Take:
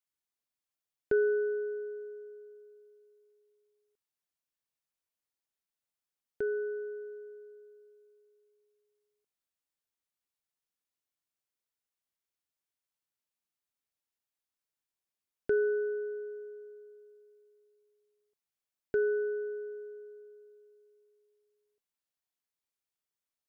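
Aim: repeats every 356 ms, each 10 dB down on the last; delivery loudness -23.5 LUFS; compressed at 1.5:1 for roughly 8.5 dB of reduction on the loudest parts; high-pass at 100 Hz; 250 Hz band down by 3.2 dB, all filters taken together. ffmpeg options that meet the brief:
-af "highpass=100,equalizer=f=250:t=o:g=-8.5,acompressor=threshold=0.00282:ratio=1.5,aecho=1:1:356|712|1068|1424:0.316|0.101|0.0324|0.0104,volume=10.6"

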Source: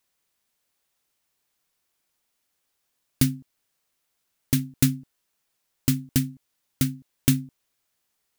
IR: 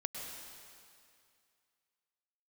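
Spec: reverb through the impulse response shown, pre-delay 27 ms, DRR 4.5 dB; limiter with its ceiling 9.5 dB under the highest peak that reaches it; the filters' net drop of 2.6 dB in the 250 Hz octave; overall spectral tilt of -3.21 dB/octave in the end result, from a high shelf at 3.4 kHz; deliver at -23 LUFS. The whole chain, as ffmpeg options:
-filter_complex "[0:a]equalizer=f=250:t=o:g=-3,highshelf=f=3400:g=5.5,alimiter=limit=0.335:level=0:latency=1,asplit=2[s0][s1];[1:a]atrim=start_sample=2205,adelay=27[s2];[s1][s2]afir=irnorm=-1:irlink=0,volume=0.562[s3];[s0][s3]amix=inputs=2:normalize=0,volume=1.78"

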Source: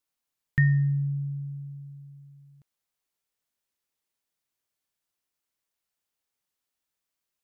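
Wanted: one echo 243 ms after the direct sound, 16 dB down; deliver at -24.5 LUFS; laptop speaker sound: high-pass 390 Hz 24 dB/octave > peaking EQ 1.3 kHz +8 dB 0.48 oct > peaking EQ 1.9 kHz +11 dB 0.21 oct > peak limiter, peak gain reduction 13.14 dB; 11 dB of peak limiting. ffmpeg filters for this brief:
-af "alimiter=limit=0.0708:level=0:latency=1,highpass=f=390:w=0.5412,highpass=f=390:w=1.3066,equalizer=f=1300:t=o:w=0.48:g=8,equalizer=f=1900:t=o:w=0.21:g=11,aecho=1:1:243:0.158,volume=7.08,alimiter=limit=0.126:level=0:latency=1"

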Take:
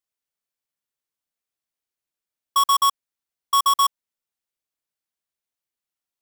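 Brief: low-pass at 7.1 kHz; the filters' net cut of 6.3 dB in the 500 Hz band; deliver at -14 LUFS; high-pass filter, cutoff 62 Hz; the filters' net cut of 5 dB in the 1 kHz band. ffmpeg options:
-af "highpass=62,lowpass=7100,equalizer=f=500:t=o:g=-6,equalizer=f=1000:t=o:g=-4.5,volume=3.16"

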